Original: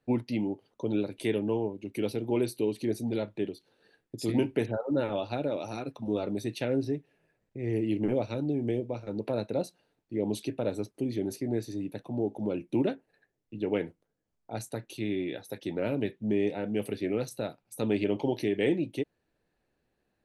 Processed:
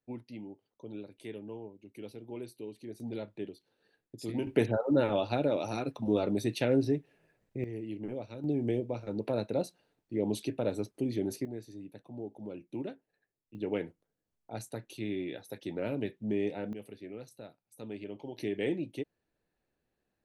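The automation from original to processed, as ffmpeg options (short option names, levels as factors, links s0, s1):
-af "asetnsamples=n=441:p=0,asendcmd='3 volume volume -7.5dB;4.47 volume volume 2dB;7.64 volume volume -10.5dB;8.44 volume volume -1dB;11.45 volume volume -11dB;13.55 volume volume -4dB;16.73 volume volume -14dB;18.38 volume volume -5.5dB',volume=0.2"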